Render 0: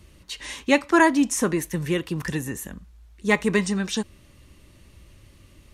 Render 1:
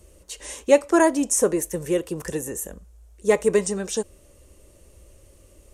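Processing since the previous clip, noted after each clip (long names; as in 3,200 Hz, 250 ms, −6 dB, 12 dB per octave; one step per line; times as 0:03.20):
graphic EQ with 10 bands 125 Hz −9 dB, 250 Hz −7 dB, 500 Hz +10 dB, 1,000 Hz −5 dB, 2,000 Hz −7 dB, 4,000 Hz −9 dB, 8,000 Hz +7 dB
level +1.5 dB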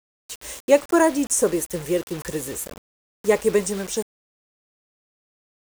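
bit-depth reduction 6 bits, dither none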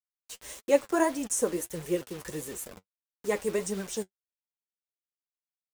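flanger 1.6 Hz, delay 4.3 ms, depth 6.7 ms, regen +40%
level −4 dB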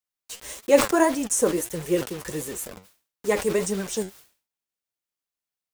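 level that may fall only so fast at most 140 dB per second
level +5.5 dB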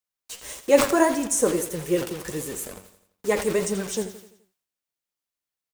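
repeating echo 85 ms, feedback 49%, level −13 dB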